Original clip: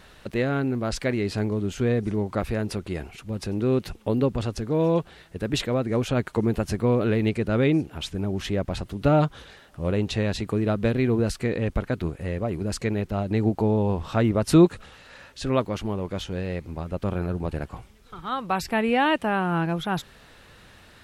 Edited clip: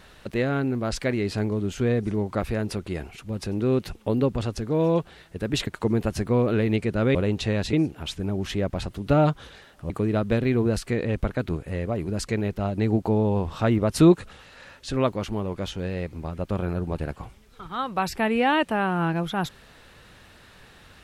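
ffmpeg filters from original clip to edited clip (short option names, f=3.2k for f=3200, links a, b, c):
-filter_complex "[0:a]asplit=5[a][b][c][d][e];[a]atrim=end=5.672[f];[b]atrim=start=6.198:end=7.682[g];[c]atrim=start=9.848:end=10.432[h];[d]atrim=start=7.678:end=9.852[i];[e]atrim=start=10.428[j];[f][g]acrossfade=d=0.004:c1=hsin:c2=hsin[k];[k][h]acrossfade=d=0.004:c1=hsin:c2=hsin[l];[l][i]acrossfade=d=0.004:c1=hsin:c2=hsin[m];[m][j]acrossfade=d=0.004:c1=hsin:c2=hsin"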